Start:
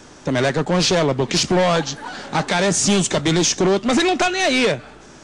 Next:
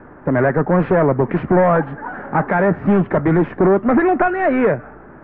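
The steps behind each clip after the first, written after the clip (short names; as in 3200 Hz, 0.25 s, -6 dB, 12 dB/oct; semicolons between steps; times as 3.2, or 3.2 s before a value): steep low-pass 1800 Hz 36 dB/oct; gain +3.5 dB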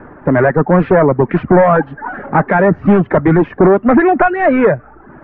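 reverb removal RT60 0.66 s; gain +5.5 dB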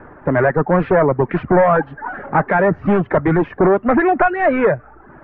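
bell 230 Hz -4.5 dB 1.3 oct; gain -2.5 dB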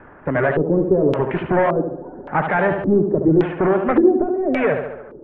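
tape echo 72 ms, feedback 67%, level -5 dB, low-pass 3000 Hz; LFO low-pass square 0.88 Hz 370–3100 Hz; gain -5 dB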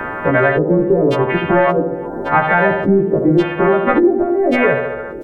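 frequency quantiser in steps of 2 st; outdoor echo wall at 61 m, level -30 dB; three-band squash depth 70%; gain +4 dB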